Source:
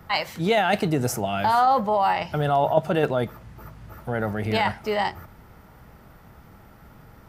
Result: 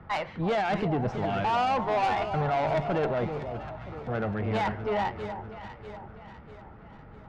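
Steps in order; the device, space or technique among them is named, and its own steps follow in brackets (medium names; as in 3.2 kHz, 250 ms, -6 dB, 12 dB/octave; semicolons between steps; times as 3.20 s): Bessel low-pass 2.2 kHz, order 4; 1.78–2.27 s: comb 2.8 ms, depth 82%; tube preamp driven hard (valve stage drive 23 dB, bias 0.25; treble shelf 5.7 kHz -5 dB); echo whose repeats swap between lows and highs 323 ms, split 960 Hz, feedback 68%, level -8 dB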